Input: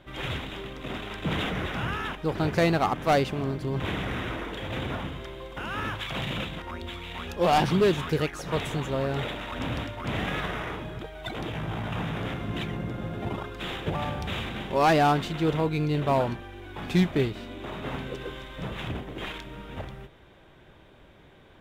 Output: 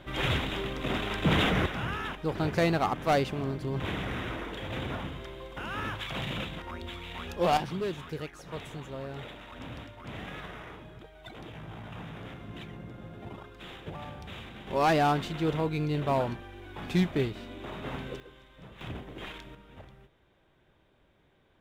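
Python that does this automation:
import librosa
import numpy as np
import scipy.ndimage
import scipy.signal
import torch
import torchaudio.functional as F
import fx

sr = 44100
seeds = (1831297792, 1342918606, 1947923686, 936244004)

y = fx.gain(x, sr, db=fx.steps((0.0, 4.0), (1.66, -3.0), (7.57, -11.0), (14.67, -3.5), (18.2, -15.0), (18.81, -6.0), (19.55, -12.5)))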